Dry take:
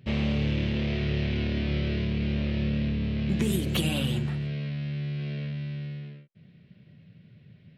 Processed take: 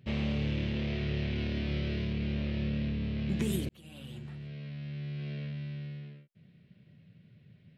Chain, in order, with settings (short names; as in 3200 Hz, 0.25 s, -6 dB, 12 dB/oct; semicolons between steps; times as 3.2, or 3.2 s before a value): 1.38–2.13 high shelf 10000 Hz +10.5 dB; 3.69–5.31 fade in linear; gain -5 dB